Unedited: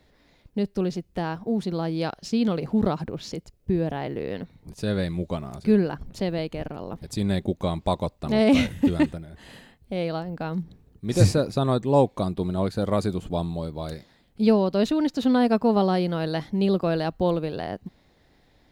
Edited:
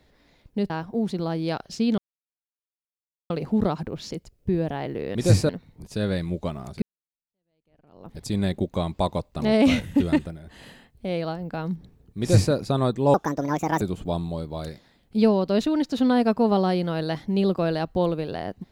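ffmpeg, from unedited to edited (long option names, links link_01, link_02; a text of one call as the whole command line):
ffmpeg -i in.wav -filter_complex "[0:a]asplit=8[link_01][link_02][link_03][link_04][link_05][link_06][link_07][link_08];[link_01]atrim=end=0.702[link_09];[link_02]atrim=start=1.228:end=2.51,asetpts=PTS-STARTPTS,afade=type=out:start_time=1.278:duration=0.004:curve=hsin,apad=pad_dur=1.32[link_10];[link_03]atrim=start=2.51:end=4.362,asetpts=PTS-STARTPTS,afade=type=in:duration=0.004:curve=hsin[link_11];[link_04]atrim=start=11.058:end=11.402[link_12];[link_05]atrim=start=4.358:end=5.69,asetpts=PTS-STARTPTS,afade=type=out:start_time=1.328:duration=0.004:curve=hsin[link_13];[link_06]atrim=start=5.69:end=12.014,asetpts=PTS-STARTPTS,afade=type=in:duration=1.34:curve=exp[link_14];[link_07]atrim=start=12.01:end=13.06,asetpts=PTS-STARTPTS,asetrate=68796,aresample=44100[link_15];[link_08]atrim=start=13.056[link_16];[link_10][link_11]concat=n=2:v=0:a=1[link_17];[link_09][link_17]acrossfade=duration=0.004:curve1=hsin:curve2=hsin[link_18];[link_18][link_12]acrossfade=duration=0.004:curve1=hsin:curve2=hsin[link_19];[link_13][link_14]concat=n=2:v=0:a=1[link_20];[link_19][link_20]acrossfade=duration=0.004:curve1=hsin:curve2=hsin[link_21];[link_21][link_15]acrossfade=duration=0.004:curve1=hsin:curve2=hsin[link_22];[link_22][link_16]acrossfade=duration=0.004:curve1=hsin:curve2=hsin" out.wav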